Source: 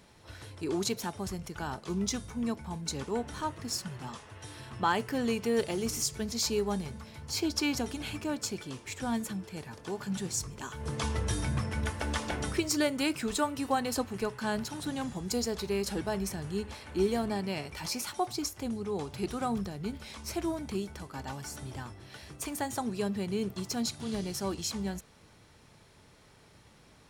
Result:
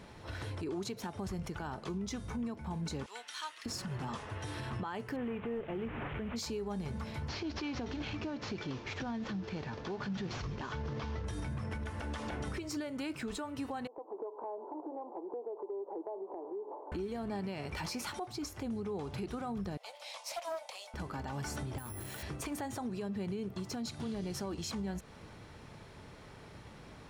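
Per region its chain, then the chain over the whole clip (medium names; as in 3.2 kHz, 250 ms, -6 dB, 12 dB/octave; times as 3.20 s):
3.06–3.66 s: Bessel high-pass 2.7 kHz + peaking EQ 3.6 kHz +4.5 dB 1.4 oct
5.16–6.36 s: one-bit delta coder 16 kbps, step -38.5 dBFS + companded quantiser 8-bit
7.28–11.25 s: CVSD coder 32 kbps + compression 2:1, threshold -38 dBFS
13.87–16.92 s: Chebyshev band-pass 320–1000 Hz, order 4 + compression 5:1, threshold -46 dBFS
19.77–20.94 s: steep high-pass 530 Hz 96 dB/octave + peaking EQ 1.5 kHz -14.5 dB 0.89 oct + loudspeaker Doppler distortion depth 0.15 ms
21.78–22.23 s: compression 4:1, threshold -46 dBFS + careless resampling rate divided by 4×, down none, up zero stuff
whole clip: treble shelf 4.2 kHz -11.5 dB; compression 6:1, threshold -41 dBFS; peak limiter -38 dBFS; trim +7.5 dB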